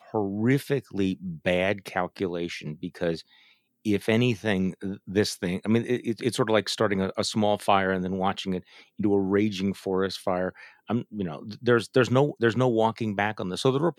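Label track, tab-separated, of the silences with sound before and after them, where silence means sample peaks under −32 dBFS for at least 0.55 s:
3.190000	3.860000	silence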